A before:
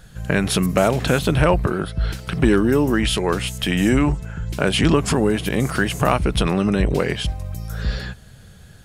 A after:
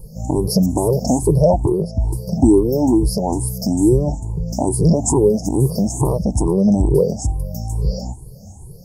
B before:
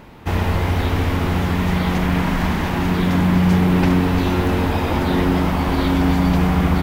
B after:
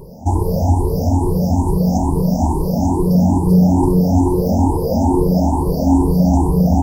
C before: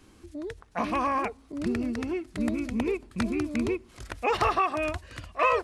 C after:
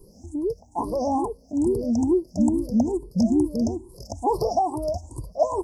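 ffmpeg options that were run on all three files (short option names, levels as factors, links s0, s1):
-filter_complex "[0:a]afftfilt=real='re*pow(10,21/40*sin(2*PI*(0.63*log(max(b,1)*sr/1024/100)/log(2)-(2.3)*(pts-256)/sr)))':imag='im*pow(10,21/40*sin(2*PI*(0.63*log(max(b,1)*sr/1024/100)/log(2)-(2.3)*(pts-256)/sr)))':win_size=1024:overlap=0.75,asplit=2[s0][s1];[s1]acompressor=threshold=0.0891:ratio=16,volume=0.841[s2];[s0][s2]amix=inputs=2:normalize=0,asuperstop=centerf=2200:order=20:qfactor=0.55,volume=0.75"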